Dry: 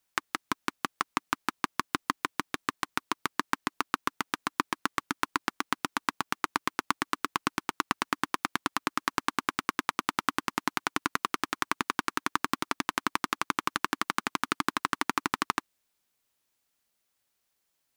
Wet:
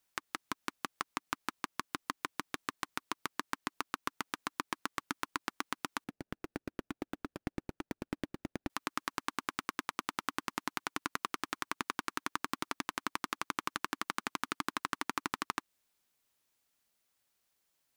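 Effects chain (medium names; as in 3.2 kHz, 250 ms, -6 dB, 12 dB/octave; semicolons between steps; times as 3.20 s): 6.04–8.70 s: median filter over 41 samples; compression 2.5:1, threshold -29 dBFS, peak gain reduction 6.5 dB; peak limiter -11 dBFS, peak gain reduction 5 dB; trim -1 dB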